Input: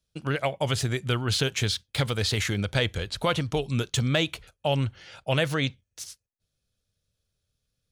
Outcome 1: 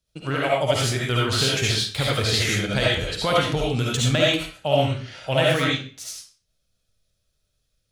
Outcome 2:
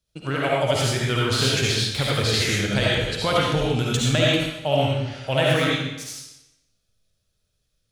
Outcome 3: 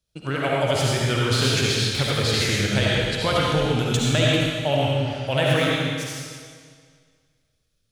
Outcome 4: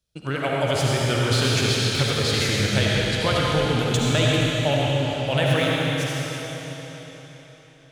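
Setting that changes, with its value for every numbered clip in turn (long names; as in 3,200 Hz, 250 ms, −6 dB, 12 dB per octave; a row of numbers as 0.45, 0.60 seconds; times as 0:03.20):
comb and all-pass reverb, RT60: 0.41, 0.93, 1.9, 4.2 seconds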